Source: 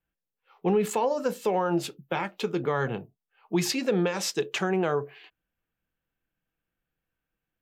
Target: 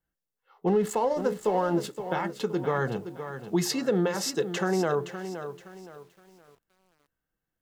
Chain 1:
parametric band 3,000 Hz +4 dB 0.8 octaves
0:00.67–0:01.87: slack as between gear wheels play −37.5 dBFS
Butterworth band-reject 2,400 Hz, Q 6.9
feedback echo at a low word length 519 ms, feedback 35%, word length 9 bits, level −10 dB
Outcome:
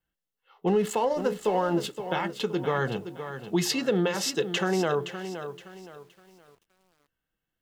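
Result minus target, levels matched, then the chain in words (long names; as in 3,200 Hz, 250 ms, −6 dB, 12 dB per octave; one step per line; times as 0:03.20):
4,000 Hz band +4.0 dB
parametric band 3,000 Hz −5 dB 0.8 octaves
0:00.67–0:01.87: slack as between gear wheels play −37.5 dBFS
Butterworth band-reject 2,400 Hz, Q 6.9
feedback echo at a low word length 519 ms, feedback 35%, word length 9 bits, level −10 dB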